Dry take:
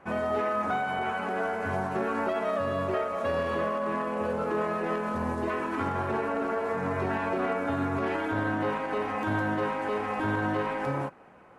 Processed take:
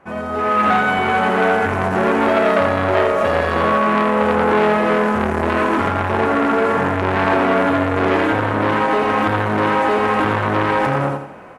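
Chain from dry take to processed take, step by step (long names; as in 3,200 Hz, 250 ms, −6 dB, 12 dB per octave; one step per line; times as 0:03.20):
automatic gain control gain up to 11 dB
repeating echo 85 ms, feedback 33%, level −4 dB
saturating transformer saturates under 1,200 Hz
level +3 dB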